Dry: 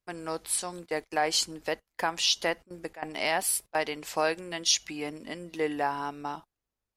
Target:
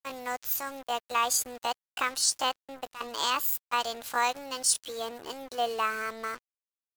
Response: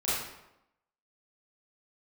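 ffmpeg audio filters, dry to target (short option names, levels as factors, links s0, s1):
-af "asetrate=68011,aresample=44100,atempo=0.64842,acrusher=bits=6:mix=0:aa=0.5"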